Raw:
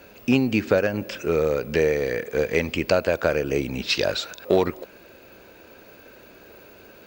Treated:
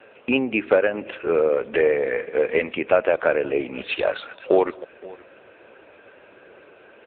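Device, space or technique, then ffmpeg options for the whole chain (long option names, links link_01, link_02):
satellite phone: -af "highpass=370,lowpass=3300,aecho=1:1:518:0.0841,volume=4.5dB" -ar 8000 -c:a libopencore_amrnb -b:a 6700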